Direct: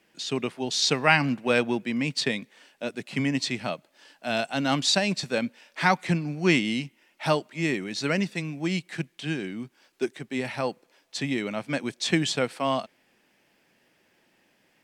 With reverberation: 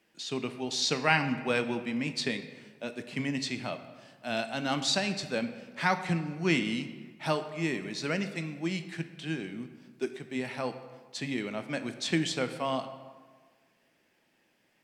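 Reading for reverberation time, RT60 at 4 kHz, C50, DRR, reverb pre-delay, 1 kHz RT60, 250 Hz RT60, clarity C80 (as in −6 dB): 1.5 s, 0.95 s, 10.5 dB, 8.5 dB, 7 ms, 1.5 s, 1.6 s, 12.0 dB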